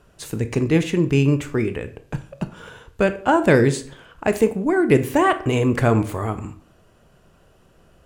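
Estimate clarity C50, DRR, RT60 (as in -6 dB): 14.0 dB, 9.5 dB, 0.50 s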